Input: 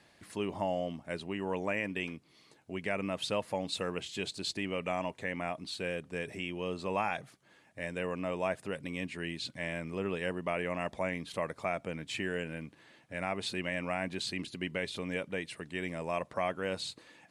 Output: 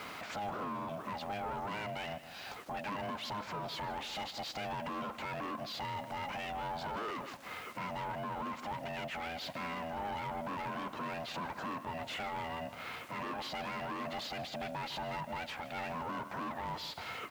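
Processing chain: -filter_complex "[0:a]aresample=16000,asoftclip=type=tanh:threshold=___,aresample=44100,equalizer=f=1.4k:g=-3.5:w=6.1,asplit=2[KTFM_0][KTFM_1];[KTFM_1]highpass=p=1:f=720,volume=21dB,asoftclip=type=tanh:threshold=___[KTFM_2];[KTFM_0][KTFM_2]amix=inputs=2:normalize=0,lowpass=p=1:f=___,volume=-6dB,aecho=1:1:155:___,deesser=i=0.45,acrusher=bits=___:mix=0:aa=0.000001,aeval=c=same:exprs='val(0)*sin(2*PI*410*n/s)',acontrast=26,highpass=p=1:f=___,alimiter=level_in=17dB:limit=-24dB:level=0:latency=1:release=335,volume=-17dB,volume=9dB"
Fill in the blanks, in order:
-36dB, -32dB, 1.1k, 0.158, 10, 230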